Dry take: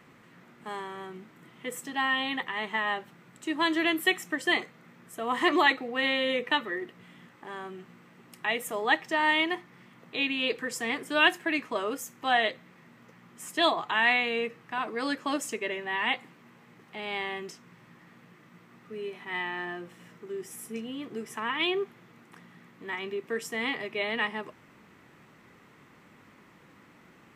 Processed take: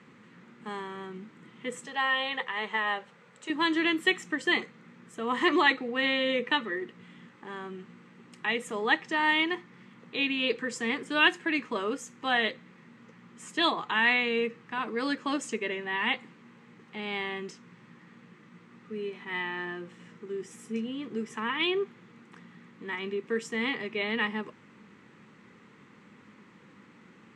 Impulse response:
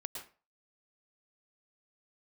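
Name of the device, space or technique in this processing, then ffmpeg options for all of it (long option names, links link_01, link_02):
car door speaker: -filter_complex "[0:a]asettb=1/sr,asplit=3[link_01][link_02][link_03];[link_01]atrim=end=1.864[link_04];[link_02]atrim=start=1.86:end=3.5,asetpts=PTS-STARTPTS,afade=type=in:duration=0.004:curve=qsin,afade=type=out:start_time=1.636:duration=0.004:curve=qsin,lowshelf=frequency=400:width_type=q:width=3:gain=-6.5[link_05];[link_03]atrim=start=3.496[link_06];[link_04][link_05]acrossfade=duration=0.004:curve1=hsin:curve2=qsin[link_07];[link_07][link_06]acrossfade=duration=0.004:curve1=qsin:curve2=hsin,highpass=90,equalizer=frequency=210:width_type=q:width=4:gain=7,equalizer=frequency=470:width_type=q:width=4:gain=3,equalizer=frequency=670:width_type=q:width=4:gain=-9,equalizer=frequency=5400:width_type=q:width=4:gain=-3,lowpass=frequency=7800:width=0.5412,lowpass=frequency=7800:width=1.3066"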